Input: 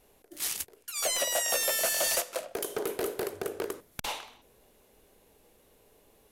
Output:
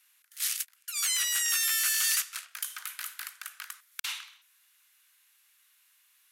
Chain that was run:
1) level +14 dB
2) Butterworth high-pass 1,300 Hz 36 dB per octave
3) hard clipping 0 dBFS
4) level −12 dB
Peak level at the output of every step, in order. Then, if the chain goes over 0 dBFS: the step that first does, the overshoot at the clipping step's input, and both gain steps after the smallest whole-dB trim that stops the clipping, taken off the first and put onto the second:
−6.5, −2.5, −2.5, −14.5 dBFS
no step passes full scale

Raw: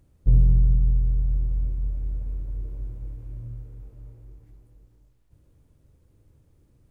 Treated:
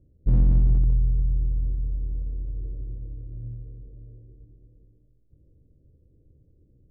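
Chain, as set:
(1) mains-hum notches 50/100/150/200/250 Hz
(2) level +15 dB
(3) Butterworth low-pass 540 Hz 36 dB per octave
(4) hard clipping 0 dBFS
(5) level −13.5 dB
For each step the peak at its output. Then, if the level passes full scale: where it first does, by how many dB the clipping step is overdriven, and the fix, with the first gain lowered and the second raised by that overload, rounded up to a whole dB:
−9.0, +6.0, +6.0, 0.0, −13.5 dBFS
step 2, 6.0 dB
step 2 +9 dB, step 5 −7.5 dB

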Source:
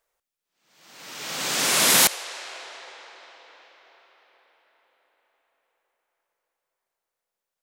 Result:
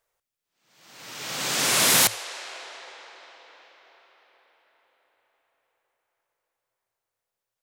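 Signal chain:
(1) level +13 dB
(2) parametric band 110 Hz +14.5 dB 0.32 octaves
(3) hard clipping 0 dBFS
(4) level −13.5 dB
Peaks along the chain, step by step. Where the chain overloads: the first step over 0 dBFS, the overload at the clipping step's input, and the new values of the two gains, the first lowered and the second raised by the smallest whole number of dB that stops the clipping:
+7.5, +7.5, 0.0, −13.5 dBFS
step 1, 7.5 dB
step 1 +5 dB, step 4 −5.5 dB

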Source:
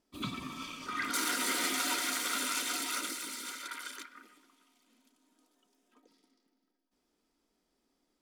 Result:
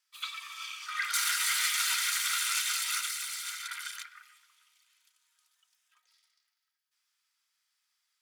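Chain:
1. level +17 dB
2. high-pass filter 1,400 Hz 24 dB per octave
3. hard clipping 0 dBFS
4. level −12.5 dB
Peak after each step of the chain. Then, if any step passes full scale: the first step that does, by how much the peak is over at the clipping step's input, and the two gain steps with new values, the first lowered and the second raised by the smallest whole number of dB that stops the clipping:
−3.0, −4.0, −4.0, −16.5 dBFS
no step passes full scale

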